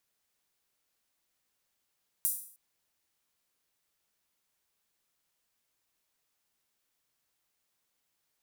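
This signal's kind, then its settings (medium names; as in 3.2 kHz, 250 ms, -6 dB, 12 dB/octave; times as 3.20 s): open hi-hat length 0.31 s, high-pass 9.8 kHz, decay 0.52 s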